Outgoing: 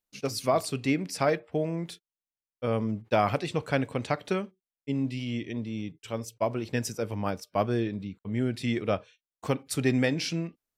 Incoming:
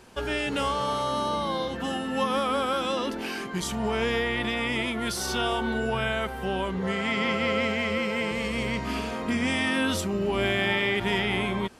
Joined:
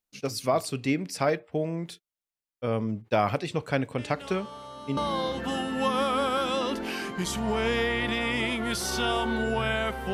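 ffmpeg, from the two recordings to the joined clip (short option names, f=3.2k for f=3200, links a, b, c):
-filter_complex "[1:a]asplit=2[a][b];[0:a]apad=whole_dur=10.13,atrim=end=10.13,atrim=end=4.972[c];[b]atrim=start=1.328:end=6.49[d];[a]atrim=start=0.34:end=1.33,asetpts=PTS-STARTPTS,volume=-15dB,afade=t=in:d=0.004:c=hsin,afade=t=out:st=0.986:d=0.004:c=hsin,adelay=3980[e];[c][d]acrossfade=d=0.004:c1=hsin:c2=hsin[f];[f][e]amix=inputs=2:normalize=0"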